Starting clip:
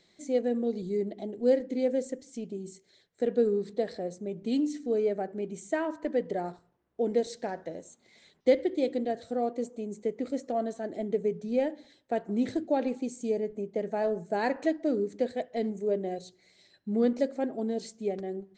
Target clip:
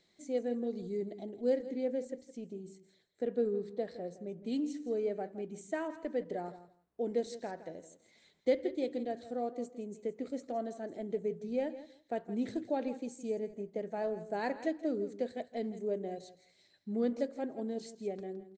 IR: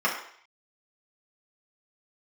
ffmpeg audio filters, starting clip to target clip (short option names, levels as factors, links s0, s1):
-filter_complex "[0:a]asettb=1/sr,asplit=3[s0][s1][s2];[s0]atrim=end=1.694[s3];[s1]atrim=start=1.69:end=4.46,asetpts=PTS-STARTPTS,afade=t=in:d=0.004:c=qsin,afade=t=out:st=2.766:d=0.004:c=qsin,highshelf=f=4800:g=-8[s4];[s2]atrim=start=4.456[s5];[s3][s4]acrossfade=d=0.004:c1=hsin:c2=qsin[s6];[s6][s5]acrossfade=d=0.004:c1=qsin:c2=hsin,aecho=1:1:165|330:0.188|0.0301,volume=0.473"